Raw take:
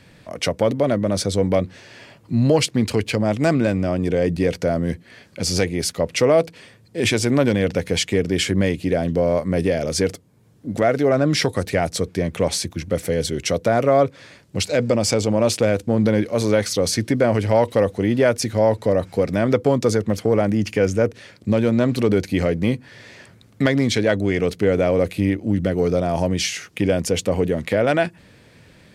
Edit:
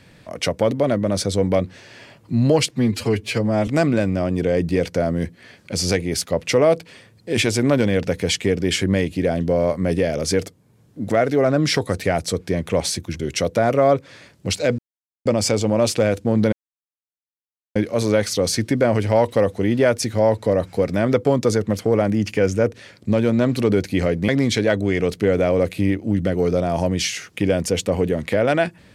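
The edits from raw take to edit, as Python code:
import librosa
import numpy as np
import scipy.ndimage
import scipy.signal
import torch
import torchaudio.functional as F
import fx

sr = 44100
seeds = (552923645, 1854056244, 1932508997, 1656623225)

y = fx.edit(x, sr, fx.stretch_span(start_s=2.7, length_s=0.65, factor=1.5),
    fx.cut(start_s=12.87, length_s=0.42),
    fx.insert_silence(at_s=14.88, length_s=0.47),
    fx.insert_silence(at_s=16.15, length_s=1.23),
    fx.cut(start_s=22.68, length_s=1.0), tone=tone)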